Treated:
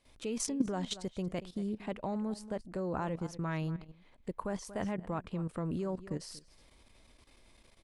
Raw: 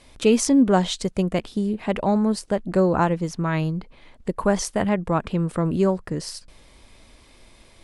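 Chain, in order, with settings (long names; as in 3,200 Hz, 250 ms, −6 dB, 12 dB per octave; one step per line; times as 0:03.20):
slap from a distant wall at 40 metres, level −17 dB
output level in coarse steps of 13 dB
level −8.5 dB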